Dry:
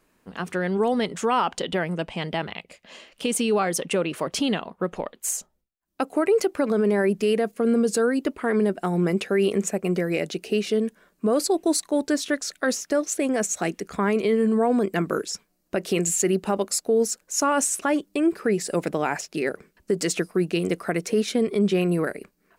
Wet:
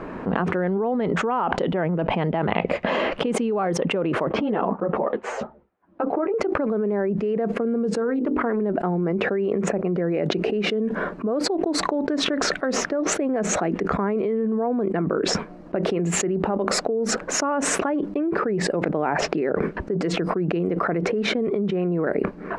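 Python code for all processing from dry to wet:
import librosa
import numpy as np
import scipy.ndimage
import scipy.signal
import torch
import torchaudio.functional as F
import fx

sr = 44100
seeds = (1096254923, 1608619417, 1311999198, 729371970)

y = fx.chain(x, sr, fx.highpass(hz=230.0, slope=6),
    fx.spacing_loss(db_at_10k=27),
    fx.ensemble(), at=(4.29, 6.34))
y = fx.chain(y, sr, fx.hum_notches(base_hz=50, count=10),
    fx.doppler_dist(depth_ms=0.14), at=(8.0, 8.61))
y = scipy.signal.sosfilt(scipy.signal.butter(2, 1200.0, 'lowpass', fs=sr, output='sos'), y)
y = fx.low_shelf(y, sr, hz=76.0, db=-9.0)
y = fx.env_flatten(y, sr, amount_pct=100)
y = F.gain(torch.from_numpy(y), -5.5).numpy()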